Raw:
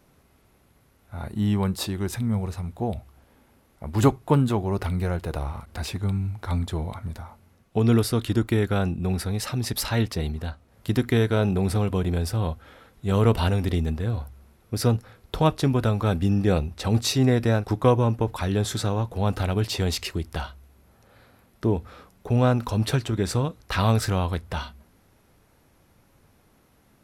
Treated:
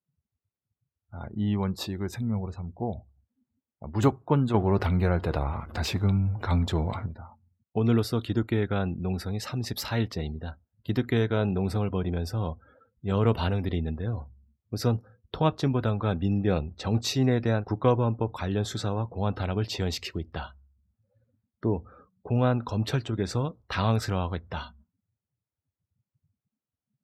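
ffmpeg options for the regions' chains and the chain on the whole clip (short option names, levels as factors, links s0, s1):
-filter_complex "[0:a]asettb=1/sr,asplit=3[s0][s1][s2];[s0]atrim=end=4.544[s3];[s1]atrim=start=4.54:end=7.06,asetpts=PTS-STARTPTS,afade=t=in:d=0.004:c=qsin,afade=t=out:st=2.516:d=0.004:c=qsin,aeval=exprs='val(0)+0.5*0.01*sgn(val(0))':c=same,acontrast=43[s4];[s2]atrim=start=7.056[s5];[s3][s4]acrossfade=d=0.004:c1=hsin:c2=qsin[s6];[s6][s5]acrossfade=d=0.004:c1=qsin:c2=hsin,highpass=73,afftdn=nr=34:nf=-44,equalizer=f=9700:w=2.8:g=-14.5,volume=0.668"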